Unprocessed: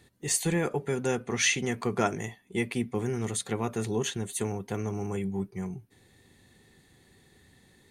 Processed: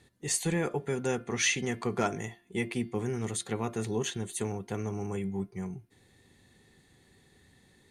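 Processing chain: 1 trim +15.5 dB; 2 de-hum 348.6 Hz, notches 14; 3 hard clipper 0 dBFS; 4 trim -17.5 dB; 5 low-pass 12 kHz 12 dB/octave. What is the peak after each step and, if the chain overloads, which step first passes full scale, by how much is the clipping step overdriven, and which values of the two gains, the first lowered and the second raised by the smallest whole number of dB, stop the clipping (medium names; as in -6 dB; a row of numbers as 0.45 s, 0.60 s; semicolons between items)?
+4.5 dBFS, +4.5 dBFS, 0.0 dBFS, -17.5 dBFS, -17.0 dBFS; step 1, 4.5 dB; step 1 +10.5 dB, step 4 -12.5 dB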